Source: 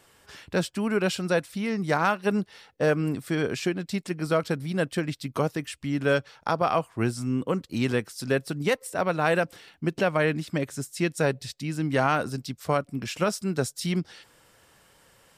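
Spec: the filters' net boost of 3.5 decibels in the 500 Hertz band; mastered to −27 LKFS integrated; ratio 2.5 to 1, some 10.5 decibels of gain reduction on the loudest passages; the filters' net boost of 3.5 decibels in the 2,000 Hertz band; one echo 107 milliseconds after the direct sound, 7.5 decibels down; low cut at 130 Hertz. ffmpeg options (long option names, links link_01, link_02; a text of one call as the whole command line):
ffmpeg -i in.wav -af "highpass=130,equalizer=frequency=500:width_type=o:gain=4,equalizer=frequency=2000:width_type=o:gain=4.5,acompressor=threshold=-32dB:ratio=2.5,aecho=1:1:107:0.422,volume=6dB" out.wav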